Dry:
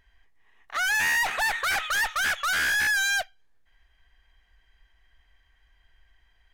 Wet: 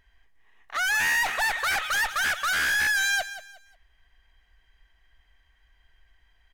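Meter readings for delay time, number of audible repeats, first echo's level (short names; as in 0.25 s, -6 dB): 0.18 s, 3, -13.5 dB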